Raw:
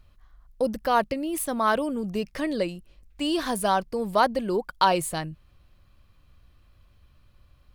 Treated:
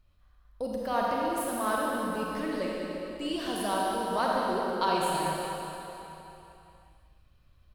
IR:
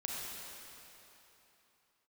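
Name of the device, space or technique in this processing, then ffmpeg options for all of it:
cave: -filter_complex "[0:a]aecho=1:1:198:0.335[a];[1:a]atrim=start_sample=2205[b];[a][b]afir=irnorm=-1:irlink=0,volume=-6.5dB"

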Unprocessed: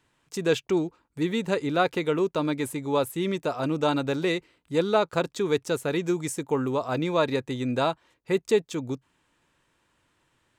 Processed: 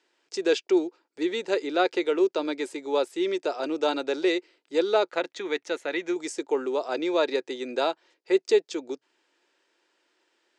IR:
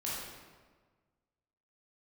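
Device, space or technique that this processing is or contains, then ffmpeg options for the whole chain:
phone speaker on a table: -filter_complex "[0:a]asettb=1/sr,asplit=3[a][b][c];[a]atrim=end=5.104[d];[b]atrim=start=5.1:end=6.16,asetpts=PTS-STARTPTS,afade=t=in:d=0.004:c=qsin,afade=t=out:st=1.056:d=0.004:c=qsin,equalizer=f=400:t=o:w=0.33:g=-12,equalizer=f=2k:t=o:w=0.33:g=7,equalizer=f=5k:t=o:w=0.33:g=-11,equalizer=f=8k:t=o:w=0.33:g=-10[e];[c]atrim=start=6.156[f];[d][e]acrossfade=d=0.004:c1=hsin:c2=qsin[g];[g][f]acrossfade=d=0.004:c1=qsin:c2=hsin,highpass=f=340:w=0.5412,highpass=f=340:w=1.3066,equalizer=f=360:t=q:w=4:g=6,equalizer=f=1.1k:t=q:w=4:g=-7,equalizer=f=4.9k:t=q:w=4:g=7,lowpass=f=7.4k:w=0.5412,lowpass=f=7.4k:w=1.3066"

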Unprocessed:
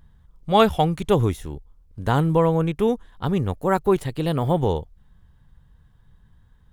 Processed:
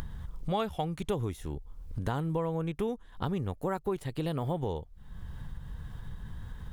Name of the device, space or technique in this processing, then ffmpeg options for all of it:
upward and downward compression: -af "acompressor=mode=upward:threshold=-28dB:ratio=2.5,acompressor=threshold=-32dB:ratio=4,volume=1dB"

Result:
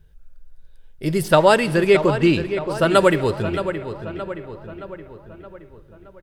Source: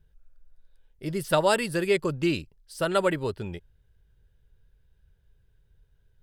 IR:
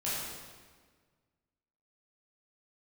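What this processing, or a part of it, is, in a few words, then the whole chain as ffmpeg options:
saturated reverb return: -filter_complex "[0:a]asettb=1/sr,asplit=3[a][b][c];[a]atrim=end=1.284[d];[b]atrim=start=1.28:end=2.9,asetpts=PTS-STARTPTS,afade=t=in:d=0.004:c=qsin,afade=t=out:st=1.616:d=0.004:c=qsin,highshelf=f=5.2k:g=-10.5[e];[c]atrim=start=2.896[f];[d][e]acrossfade=d=0.004:c1=hsin:c2=qsin[g];[g][f]acrossfade=d=0.004:c1=qsin:c2=hsin,asplit=2[h][i];[i]adelay=621,lowpass=f=3.3k:p=1,volume=-10dB,asplit=2[j][k];[k]adelay=621,lowpass=f=3.3k:p=1,volume=0.54,asplit=2[l][m];[m]adelay=621,lowpass=f=3.3k:p=1,volume=0.54,asplit=2[n][o];[o]adelay=621,lowpass=f=3.3k:p=1,volume=0.54,asplit=2[p][q];[q]adelay=621,lowpass=f=3.3k:p=1,volume=0.54,asplit=2[r][s];[s]adelay=621,lowpass=f=3.3k:p=1,volume=0.54[t];[h][j][l][n][p][r][t]amix=inputs=7:normalize=0,asplit=2[u][v];[1:a]atrim=start_sample=2205[w];[v][w]afir=irnorm=-1:irlink=0,asoftclip=type=tanh:threshold=-22dB,volume=-17.5dB[x];[u][x]amix=inputs=2:normalize=0,volume=8.5dB"

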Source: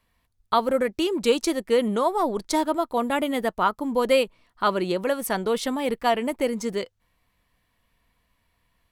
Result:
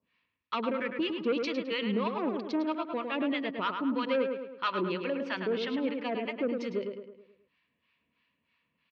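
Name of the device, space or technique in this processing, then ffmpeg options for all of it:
guitar amplifier with harmonic tremolo: -filter_complex "[0:a]acrossover=split=770[a][b];[a]aeval=exprs='val(0)*(1-1/2+1/2*cos(2*PI*3.1*n/s))':c=same[c];[b]aeval=exprs='val(0)*(1-1/2-1/2*cos(2*PI*3.1*n/s))':c=same[d];[c][d]amix=inputs=2:normalize=0,asoftclip=type=tanh:threshold=-21dB,highpass=88,highpass=100,equalizer=f=110:t=q:w=4:g=-9,equalizer=f=260:t=q:w=4:g=3,equalizer=f=760:t=q:w=4:g=-9,equalizer=f=2.6k:t=q:w=4:g=10,lowpass=f=4.5k:w=0.5412,lowpass=f=4.5k:w=1.3066,asettb=1/sr,asplit=3[e][f][g];[e]atrim=end=5.434[h];[f]atrim=start=5.43:end=5.97,asetpts=PTS-STARTPTS,afade=t=in:d=0.004:c=qsin,afade=t=out:st=0.536:d=0.004:c=qsin,equalizer=f=13k:t=o:w=1.8:g=-8[i];[g]atrim=start=5.966[j];[h][i]acrossfade=d=0.004:c1=hsin:c2=qsin[k];[k][j]acrossfade=d=0.004:c1=qsin:c2=hsin,lowpass=f=5.9k:w=0.5412,lowpass=f=5.9k:w=1.3066,asplit=2[l][m];[m]adelay=106,lowpass=f=3k:p=1,volume=-5dB,asplit=2[n][o];[o]adelay=106,lowpass=f=3k:p=1,volume=0.49,asplit=2[p][q];[q]adelay=106,lowpass=f=3k:p=1,volume=0.49,asplit=2[r][s];[s]adelay=106,lowpass=f=3k:p=1,volume=0.49,asplit=2[t][u];[u]adelay=106,lowpass=f=3k:p=1,volume=0.49,asplit=2[v][w];[w]adelay=106,lowpass=f=3k:p=1,volume=0.49[x];[l][n][p][r][t][v][x]amix=inputs=7:normalize=0,volume=-2dB"

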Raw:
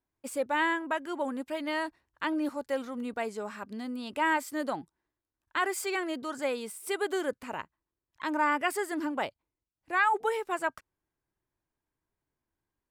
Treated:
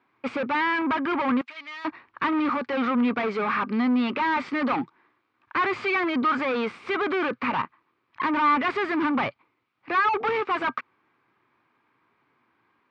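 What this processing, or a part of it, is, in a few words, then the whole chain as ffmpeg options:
overdrive pedal into a guitar cabinet: -filter_complex "[0:a]asplit=2[a][b];[b]highpass=f=720:p=1,volume=34dB,asoftclip=type=tanh:threshold=-14.5dB[c];[a][c]amix=inputs=2:normalize=0,lowpass=f=1.4k:p=1,volume=-6dB,highpass=99,equalizer=f=120:t=q:w=4:g=6,equalizer=f=240:t=q:w=4:g=6,equalizer=f=620:t=q:w=4:g=-6,equalizer=f=1.2k:t=q:w=4:g=9,equalizer=f=2.3k:t=q:w=4:g=9,lowpass=f=4.3k:w=0.5412,lowpass=f=4.3k:w=1.3066,asettb=1/sr,asplit=3[d][e][f];[d]atrim=end=1.414[g];[e]atrim=start=1.41:end=1.85,asetpts=PTS-STARTPTS,afade=t=in:d=0.004:c=qsin,afade=t=out:st=0.436:d=0.004:c=qsin,aderivative[h];[f]atrim=start=1.846[i];[g][h]acrossfade=d=0.004:c1=hsin:c2=qsin[j];[j][i]acrossfade=d=0.004:c1=qsin:c2=hsin,volume=-3.5dB"

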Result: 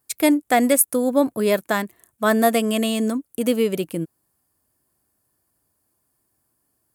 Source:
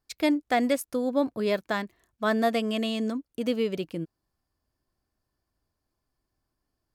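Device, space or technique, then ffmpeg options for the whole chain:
budget condenser microphone: -af "highpass=96,highshelf=f=7k:t=q:w=1.5:g=12,volume=7dB"

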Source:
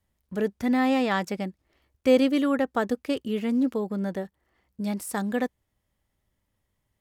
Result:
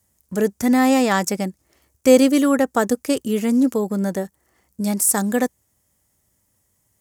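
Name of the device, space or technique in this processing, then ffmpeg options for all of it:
budget condenser microphone: -af "highpass=64,highshelf=f=5k:t=q:w=1.5:g=11,volume=7dB"

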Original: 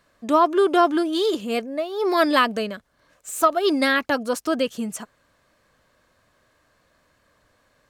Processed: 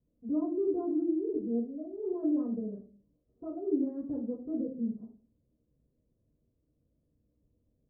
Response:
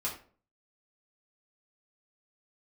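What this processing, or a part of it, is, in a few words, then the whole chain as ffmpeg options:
next room: -filter_complex "[0:a]lowpass=f=380:w=0.5412,lowpass=f=380:w=1.3066[a];[1:a]atrim=start_sample=2205[b];[a][b]afir=irnorm=-1:irlink=0,volume=-8.5dB"

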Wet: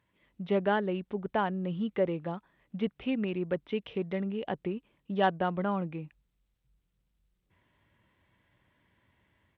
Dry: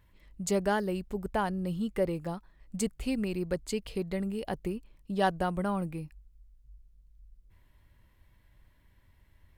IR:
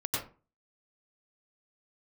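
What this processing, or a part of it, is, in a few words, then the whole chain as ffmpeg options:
Bluetooth headset: -af "highpass=150,dynaudnorm=f=110:g=5:m=6dB,aresample=8000,aresample=44100,volume=-5dB" -ar 32000 -c:a sbc -b:a 64k

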